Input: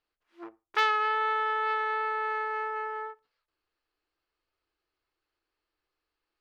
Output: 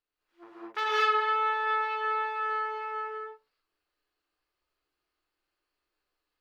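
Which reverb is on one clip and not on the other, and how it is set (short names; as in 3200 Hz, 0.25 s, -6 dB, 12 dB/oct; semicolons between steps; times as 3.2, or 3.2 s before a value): non-linear reverb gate 0.25 s rising, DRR -8 dB; gain -7.5 dB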